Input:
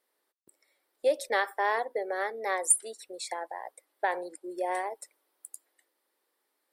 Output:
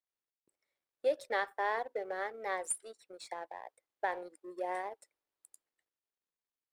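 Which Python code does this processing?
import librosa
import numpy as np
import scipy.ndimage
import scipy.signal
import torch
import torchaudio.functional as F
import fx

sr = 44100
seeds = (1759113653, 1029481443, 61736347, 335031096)

y = fx.law_mismatch(x, sr, coded='A')
y = fx.high_shelf(y, sr, hz=6400.0, db=-11.5)
y = y * 10.0 ** (-4.5 / 20.0)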